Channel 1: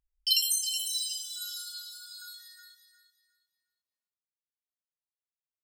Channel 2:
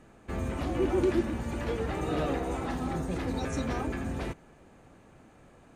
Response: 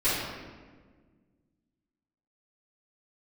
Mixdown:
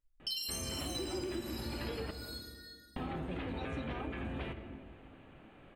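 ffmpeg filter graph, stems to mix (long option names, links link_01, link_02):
-filter_complex "[0:a]aphaser=in_gain=1:out_gain=1:delay=3.3:decay=0.39:speed=0.38:type=sinusoidal,volume=-12.5dB,asplit=2[link_01][link_02];[link_02]volume=-3.5dB[link_03];[1:a]highshelf=frequency=4300:width_type=q:width=3:gain=-11.5,adelay=200,volume=-2.5dB,asplit=3[link_04][link_05][link_06];[link_04]atrim=end=2.11,asetpts=PTS-STARTPTS,afade=type=out:start_time=2.106:duration=0.004:curve=hsin[link_07];[link_05]atrim=start=2.11:end=2.96,asetpts=PTS-STARTPTS,volume=0[link_08];[link_06]atrim=start=2.96,asetpts=PTS-STARTPTS,afade=type=in:duration=0.004:curve=hsin[link_09];[link_07][link_08][link_09]concat=n=3:v=0:a=1,asplit=2[link_10][link_11];[link_11]volume=-23dB[link_12];[2:a]atrim=start_sample=2205[link_13];[link_03][link_12]amix=inputs=2:normalize=0[link_14];[link_14][link_13]afir=irnorm=-1:irlink=0[link_15];[link_01][link_10][link_15]amix=inputs=3:normalize=0,acompressor=threshold=-36dB:ratio=6"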